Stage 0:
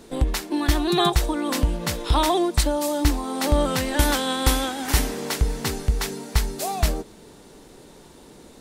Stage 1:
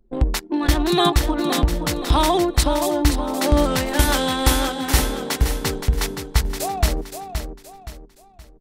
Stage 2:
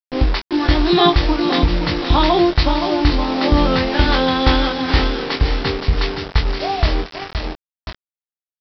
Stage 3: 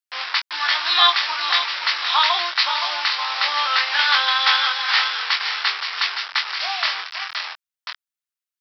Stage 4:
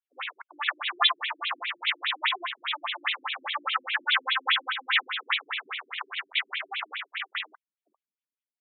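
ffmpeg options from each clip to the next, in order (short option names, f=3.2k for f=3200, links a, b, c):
-af "anlmdn=63.1,aecho=1:1:521|1042|1563|2084:0.398|0.143|0.0516|0.0186,volume=2.5dB"
-filter_complex "[0:a]aresample=11025,acrusher=bits=4:mix=0:aa=0.000001,aresample=44100,asplit=2[a][b];[b]adelay=23,volume=-5dB[c];[a][c]amix=inputs=2:normalize=0,volume=2dB"
-af "highpass=f=1.1k:w=0.5412,highpass=f=1.1k:w=1.3066,volume=4.5dB"
-af "aresample=8000,aresample=44100,asubboost=boost=6.5:cutoff=240,afftfilt=real='re*between(b*sr/1024,240*pow(3100/240,0.5+0.5*sin(2*PI*4.9*pts/sr))/1.41,240*pow(3100/240,0.5+0.5*sin(2*PI*4.9*pts/sr))*1.41)':imag='im*between(b*sr/1024,240*pow(3100/240,0.5+0.5*sin(2*PI*4.9*pts/sr))/1.41,240*pow(3100/240,0.5+0.5*sin(2*PI*4.9*pts/sr))*1.41)':win_size=1024:overlap=0.75"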